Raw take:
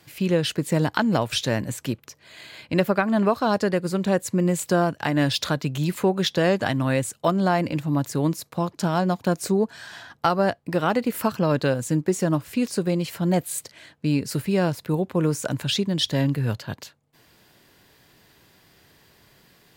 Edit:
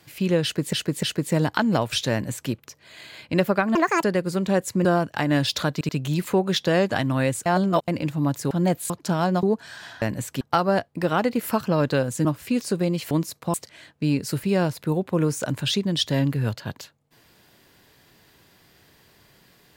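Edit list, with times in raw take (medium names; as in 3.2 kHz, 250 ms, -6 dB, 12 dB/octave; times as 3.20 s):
0.43–0.73 s: loop, 3 plays
1.52–1.91 s: copy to 10.12 s
3.15–3.62 s: speed 163%
4.43–4.71 s: delete
5.59 s: stutter 0.08 s, 3 plays
7.16–7.58 s: reverse
8.21–8.64 s: swap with 13.17–13.56 s
9.17–9.53 s: delete
11.96–12.31 s: delete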